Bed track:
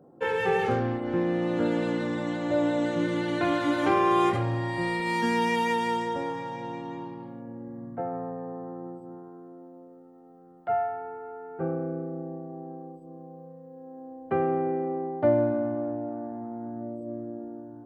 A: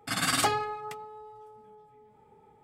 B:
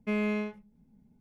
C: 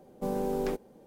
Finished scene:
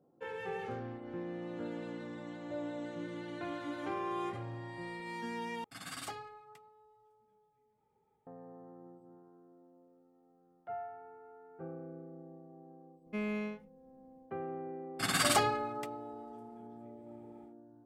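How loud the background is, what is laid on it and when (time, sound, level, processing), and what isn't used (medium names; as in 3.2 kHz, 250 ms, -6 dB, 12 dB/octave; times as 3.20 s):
bed track -15 dB
5.64 s: replace with A -17.5 dB
13.06 s: add B -7 dB
14.92 s: add A -2.5 dB, fades 0.10 s
not used: C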